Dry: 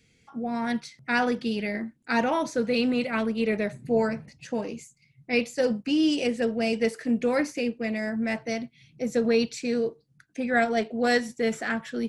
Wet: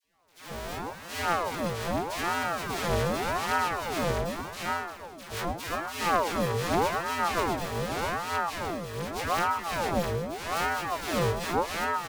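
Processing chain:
samples sorted by size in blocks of 256 samples
notch filter 2,400 Hz, Q 21
all-pass dispersion lows, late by 142 ms, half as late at 870 Hz
chorus effect 0.62 Hz, delay 16 ms, depth 4.9 ms
multi-tap delay 107/347/462/656 ms −15.5/−7/−16/−3.5 dB
ring modulator whose carrier an LFO sweeps 700 Hz, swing 60%, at 0.84 Hz

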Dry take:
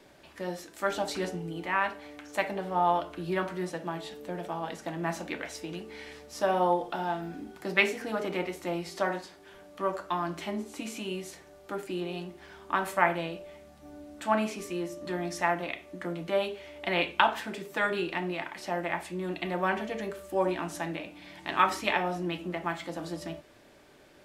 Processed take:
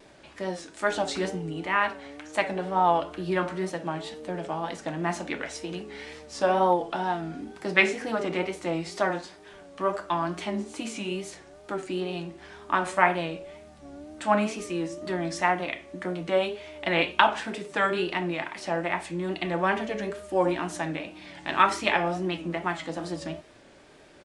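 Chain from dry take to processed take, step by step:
downsampling to 22,050 Hz
tape wow and flutter 79 cents
level +3.5 dB

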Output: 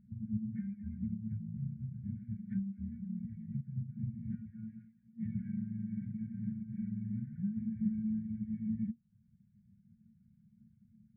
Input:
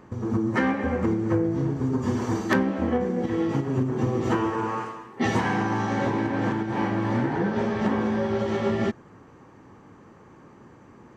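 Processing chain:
formant resonators in series u
reverb reduction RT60 0.58 s
brick-wall band-stop 230–1,400 Hz
level +3.5 dB

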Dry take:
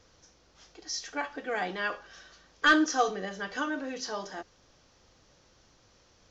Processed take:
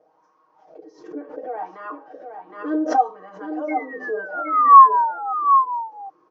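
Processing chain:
parametric band 300 Hz +12 dB 2.6 octaves
in parallel at 0 dB: downward compressor, threshold −35 dBFS, peak gain reduction 22.5 dB
on the sum: sound drawn into the spectrogram fall, 0:03.68–0:05.33, 770–2,200 Hz −13 dBFS
LFO wah 0.69 Hz 370–1,100 Hz, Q 9.3
parametric band 3,600 Hz −4 dB 0.47 octaves
comb filter 6.4 ms, depth 86%
hum removal 130.1 Hz, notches 5
on a send: single-tap delay 766 ms −7.5 dB
on the sum: background raised ahead of every attack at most 110 dB per second
level +4 dB

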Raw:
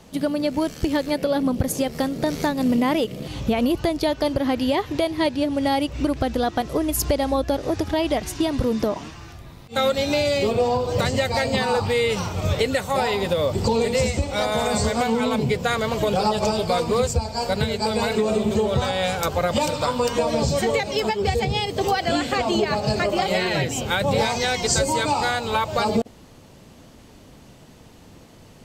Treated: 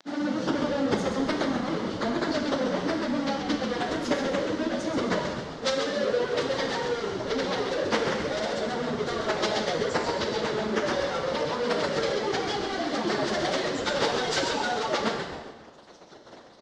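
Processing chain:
expanding power law on the bin magnitudes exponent 1.5
log-companded quantiser 2 bits
reverb reduction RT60 0.67 s
loudspeaker in its box 250–5,600 Hz, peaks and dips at 310 Hz +4 dB, 600 Hz +4 dB, 2,500 Hz −8 dB
on a send: echo with shifted repeats 231 ms, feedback 34%, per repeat −74 Hz, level −6.5 dB
on the sum: four-comb reverb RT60 1.9 s, combs from 33 ms, DRR 3 dB
dynamic equaliser 710 Hz, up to −4 dB, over −33 dBFS, Q 1.6
time stretch by phase vocoder 0.58×

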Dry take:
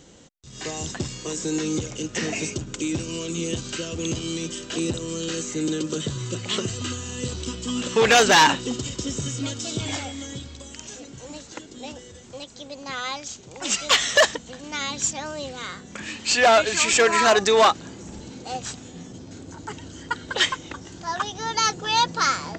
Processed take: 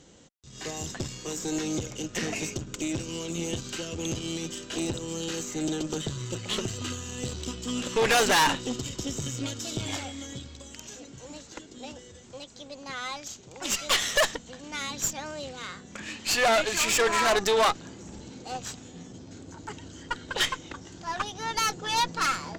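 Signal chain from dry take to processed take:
tube saturation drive 18 dB, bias 0.75

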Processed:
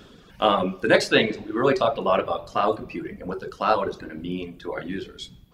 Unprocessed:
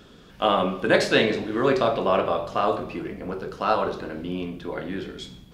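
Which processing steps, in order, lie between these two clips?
reverb reduction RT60 1.5 s
level +2 dB

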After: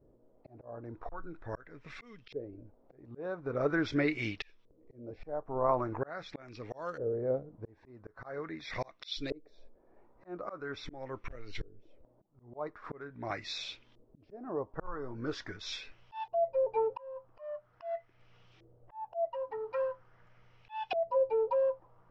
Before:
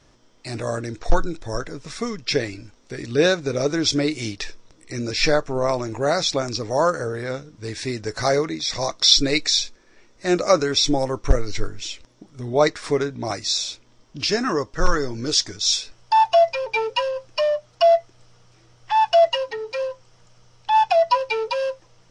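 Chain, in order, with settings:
auto-filter low-pass saw up 0.43 Hz 440–3,300 Hz
volume swells 561 ms
level −8.5 dB

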